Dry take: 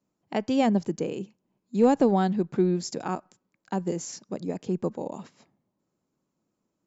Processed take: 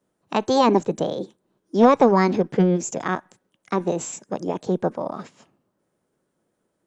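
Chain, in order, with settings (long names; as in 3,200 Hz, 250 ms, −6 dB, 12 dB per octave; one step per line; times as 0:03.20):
formants moved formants +5 semitones
level +5.5 dB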